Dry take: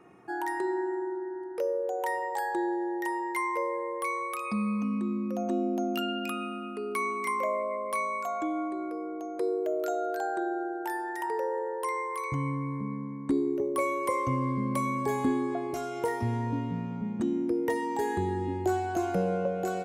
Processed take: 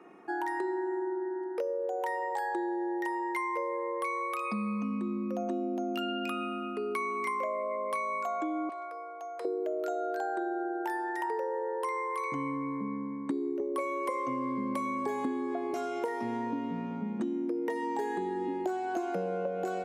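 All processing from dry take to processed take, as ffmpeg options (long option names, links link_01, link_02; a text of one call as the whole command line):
ffmpeg -i in.wav -filter_complex "[0:a]asettb=1/sr,asplit=3[link_01][link_02][link_03];[link_01]atrim=end=8.694[link_04];[link_02]atrim=start=8.69:end=9.45,asetpts=PTS-STARTPTS,afade=type=in:duration=0.004:curve=qsin,afade=type=out:start_time=0.756:duration=0.004:curve=qsin,highpass=frequency=650:width=0.5412,highpass=frequency=650:width=1.3066,volume=35.5dB,asoftclip=hard,volume=-35.5dB[link_05];[link_03]atrim=start=9.446[link_06];[link_04][link_05]acrossfade=duration=0.004:curve1=hsin:curve2=qsin[link_07];[link_07][link_06]acrossfade=duration=0.004:curve1=qsin:curve2=hsin,highpass=frequency=210:width=0.5412,highpass=frequency=210:width=1.3066,highshelf=frequency=6800:gain=-10.5,acompressor=threshold=-32dB:ratio=6,volume=2.5dB" out.wav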